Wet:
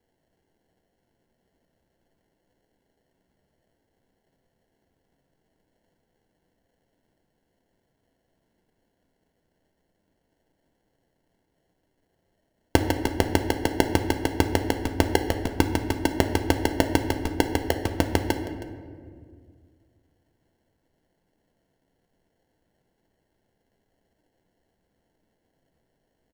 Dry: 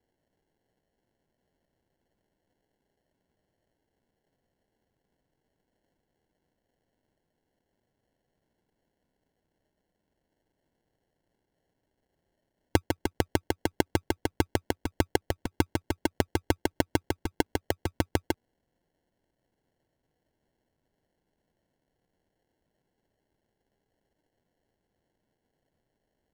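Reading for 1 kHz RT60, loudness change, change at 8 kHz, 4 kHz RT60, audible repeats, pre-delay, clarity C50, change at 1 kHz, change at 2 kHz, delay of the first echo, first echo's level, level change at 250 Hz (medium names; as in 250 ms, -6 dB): 1.7 s, +5.5 dB, +5.0 dB, 1.0 s, 1, 4 ms, 8.0 dB, +6.0 dB, +5.5 dB, 318 ms, -18.0 dB, +6.0 dB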